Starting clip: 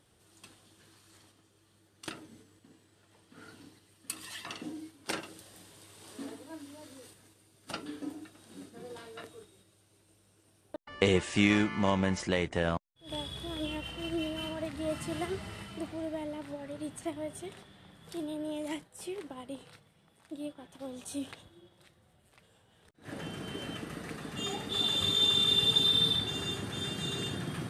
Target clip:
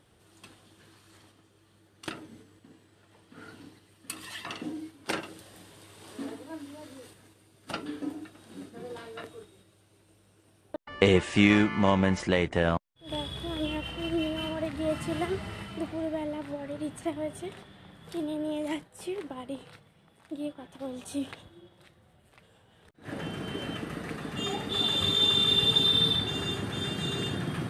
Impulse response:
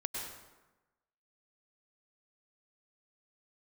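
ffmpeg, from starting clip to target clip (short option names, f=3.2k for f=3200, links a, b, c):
-filter_complex "[0:a]asplit=2[a][b];[1:a]atrim=start_sample=2205,atrim=end_sample=3969,lowpass=4.3k[c];[b][c]afir=irnorm=-1:irlink=0,volume=-1.5dB[d];[a][d]amix=inputs=2:normalize=0"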